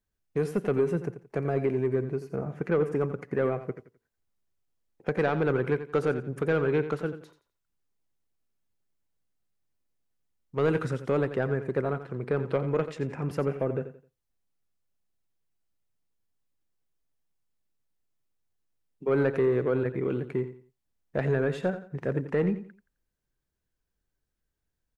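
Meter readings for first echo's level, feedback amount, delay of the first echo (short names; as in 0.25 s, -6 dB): -12.0 dB, 28%, 87 ms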